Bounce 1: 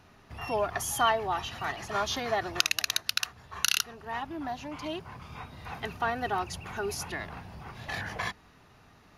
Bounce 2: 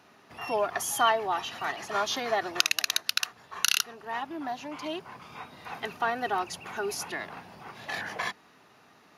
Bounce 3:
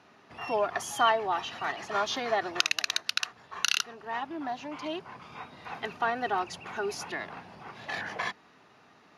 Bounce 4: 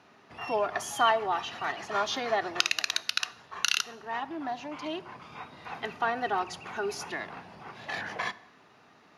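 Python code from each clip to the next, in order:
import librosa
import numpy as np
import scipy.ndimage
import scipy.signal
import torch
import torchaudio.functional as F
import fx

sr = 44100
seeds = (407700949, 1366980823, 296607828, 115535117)

y1 = scipy.signal.sosfilt(scipy.signal.butter(2, 230.0, 'highpass', fs=sr, output='sos'), x)
y1 = F.gain(torch.from_numpy(y1), 1.5).numpy()
y2 = fx.air_absorb(y1, sr, metres=60.0)
y3 = fx.rev_plate(y2, sr, seeds[0], rt60_s=0.85, hf_ratio=0.75, predelay_ms=0, drr_db=16.0)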